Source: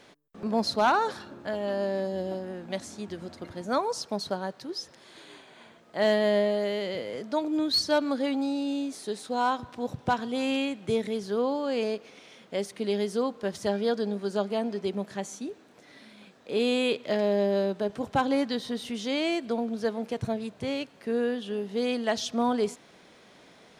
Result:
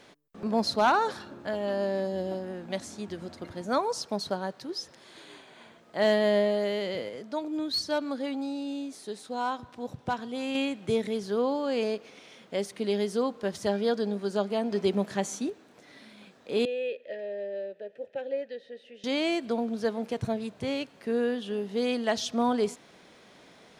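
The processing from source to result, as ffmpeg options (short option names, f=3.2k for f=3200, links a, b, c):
-filter_complex "[0:a]asettb=1/sr,asplit=3[a][b][c];[a]atrim=end=16.654[d];[b]atrim=start=16.65:end=19.04,asetpts=PTS-STARTPTS,afade=t=in:d=0.004:c=qsin,afade=t=out:st=2.386:d=0.004:c=qsin,asplit=3[e][f][g];[e]bandpass=f=530:t=q:w=8,volume=0dB[h];[f]bandpass=f=1.84k:t=q:w=8,volume=-6dB[i];[g]bandpass=f=2.48k:t=q:w=8,volume=-9dB[j];[h][i][j]amix=inputs=3:normalize=0[k];[c]atrim=start=19.036[l];[d][k]acrossfade=d=0.004:c1=hsin:c2=qsin[m];[m][l]acrossfade=d=0.004:c1=qsin:c2=hsin,asplit=5[n][o][p][q][r];[n]atrim=end=7.092[s];[o]atrim=start=7.088:end=10.552,asetpts=PTS-STARTPTS,volume=-4.5dB[t];[p]atrim=start=10.548:end=14.722[u];[q]atrim=start=14.718:end=15.502,asetpts=PTS-STARTPTS,volume=4.5dB[v];[r]atrim=start=15.498[w];[s][t]acrossfade=d=0.004:c1=hsin:c2=hsin[x];[x][u]acrossfade=d=0.004:c1=hsin:c2=hsin[y];[y][v]acrossfade=d=0.004:c1=hsin:c2=hsin[z];[z][w]acrossfade=d=0.004:c1=hsin:c2=hsin"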